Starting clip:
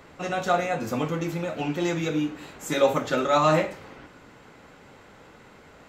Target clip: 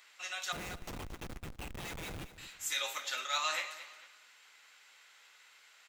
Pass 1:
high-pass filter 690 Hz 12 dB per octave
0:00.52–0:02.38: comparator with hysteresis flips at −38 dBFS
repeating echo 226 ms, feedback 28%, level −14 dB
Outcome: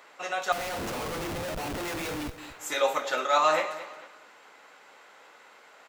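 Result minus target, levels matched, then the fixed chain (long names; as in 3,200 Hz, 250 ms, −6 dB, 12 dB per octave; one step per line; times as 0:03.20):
500 Hz band +10.0 dB
high-pass filter 2,500 Hz 12 dB per octave
0:00.52–0:02.38: comparator with hysteresis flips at −38 dBFS
repeating echo 226 ms, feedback 28%, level −14 dB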